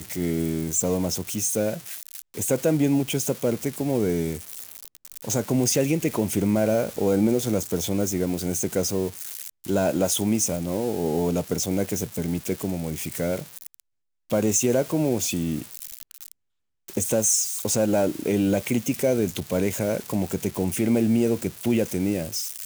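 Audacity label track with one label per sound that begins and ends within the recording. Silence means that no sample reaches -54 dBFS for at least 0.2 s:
14.300000	16.320000	sound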